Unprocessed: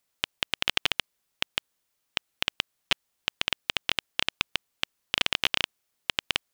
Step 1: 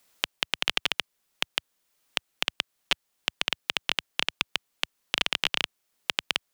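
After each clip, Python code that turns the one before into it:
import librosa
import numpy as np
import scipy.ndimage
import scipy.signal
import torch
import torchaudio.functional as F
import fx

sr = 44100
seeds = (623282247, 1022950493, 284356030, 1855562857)

y = fx.peak_eq(x, sr, hz=88.0, db=-10.5, octaves=0.69)
y = fx.band_squash(y, sr, depth_pct=40)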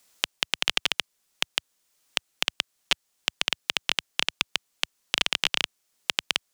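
y = fx.peak_eq(x, sr, hz=6900.0, db=5.5, octaves=1.5)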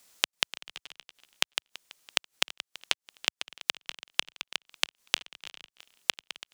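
y = fx.gate_flip(x, sr, shuts_db=-20.0, range_db=-25)
y = fx.echo_feedback(y, sr, ms=332, feedback_pct=40, wet_db=-19.0)
y = F.gain(torch.from_numpy(y), 2.0).numpy()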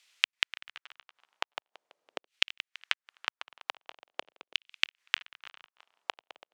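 y = fx.filter_lfo_bandpass(x, sr, shape='saw_down', hz=0.44, low_hz=450.0, high_hz=2900.0, q=1.7)
y = F.gain(torch.from_numpy(y), 4.0).numpy()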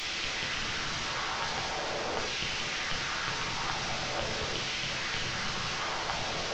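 y = fx.delta_mod(x, sr, bps=32000, step_db=-30.0)
y = y + 10.0 ** (-12.5 / 20.0) * np.pad(y, (int(731 * sr / 1000.0), 0))[:len(y)]
y = fx.room_shoebox(y, sr, seeds[0], volume_m3=31.0, walls='mixed', distance_m=0.46)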